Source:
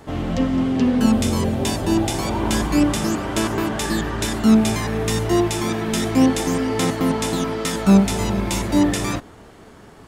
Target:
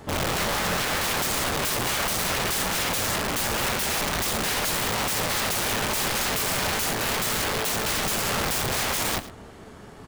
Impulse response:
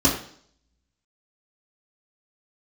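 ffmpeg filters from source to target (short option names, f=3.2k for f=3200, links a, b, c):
-filter_complex "[0:a]aeval=exprs='(mod(11.2*val(0)+1,2)-1)/11.2':c=same,aecho=1:1:108:0.168,asplit=2[a][b];[1:a]atrim=start_sample=2205[c];[b][c]afir=irnorm=-1:irlink=0,volume=-38dB[d];[a][d]amix=inputs=2:normalize=0"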